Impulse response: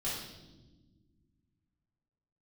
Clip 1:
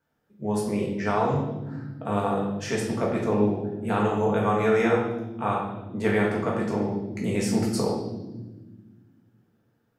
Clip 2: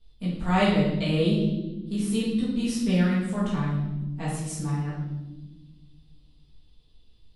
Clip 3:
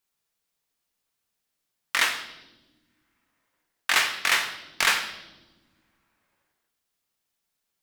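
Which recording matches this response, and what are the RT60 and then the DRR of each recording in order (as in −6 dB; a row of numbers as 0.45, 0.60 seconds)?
2; non-exponential decay, non-exponential decay, non-exponential decay; −3.0, −9.0, 6.5 decibels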